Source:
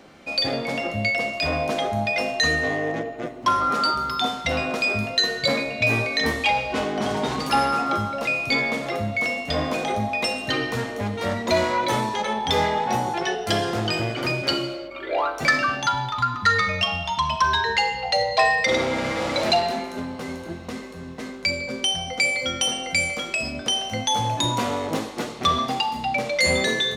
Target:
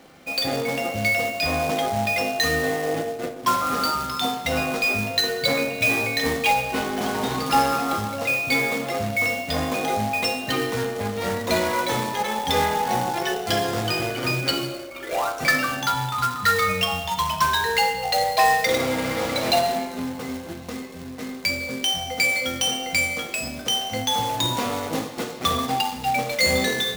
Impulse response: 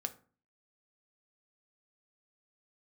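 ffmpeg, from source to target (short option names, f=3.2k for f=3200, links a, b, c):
-filter_complex "[0:a]bandreject=f=50.49:t=h:w=4,bandreject=f=100.98:t=h:w=4,bandreject=f=151.47:t=h:w=4,bandreject=f=201.96:t=h:w=4,bandreject=f=252.45:t=h:w=4,bandreject=f=302.94:t=h:w=4,bandreject=f=353.43:t=h:w=4,bandreject=f=403.92:t=h:w=4,bandreject=f=454.41:t=h:w=4,bandreject=f=504.9:t=h:w=4,bandreject=f=555.39:t=h:w=4,bandreject=f=605.88:t=h:w=4,bandreject=f=656.37:t=h:w=4,bandreject=f=706.86:t=h:w=4,bandreject=f=757.35:t=h:w=4,bandreject=f=807.84:t=h:w=4,bandreject=f=858.33:t=h:w=4,bandreject=f=908.82:t=h:w=4,bandreject=f=959.31:t=h:w=4,bandreject=f=1.0098k:t=h:w=4,bandreject=f=1.06029k:t=h:w=4,bandreject=f=1.11078k:t=h:w=4,bandreject=f=1.16127k:t=h:w=4,bandreject=f=1.21176k:t=h:w=4,bandreject=f=1.26225k:t=h:w=4,bandreject=f=1.31274k:t=h:w=4,bandreject=f=1.36323k:t=h:w=4,bandreject=f=1.41372k:t=h:w=4,bandreject=f=1.46421k:t=h:w=4,bandreject=f=1.5147k:t=h:w=4,bandreject=f=1.56519k:t=h:w=4,bandreject=f=1.61568k:t=h:w=4,bandreject=f=1.66617k:t=h:w=4,bandreject=f=1.71666k:t=h:w=4,acrusher=bits=2:mode=log:mix=0:aa=0.000001[a];[1:a]atrim=start_sample=2205[b];[a][b]afir=irnorm=-1:irlink=0"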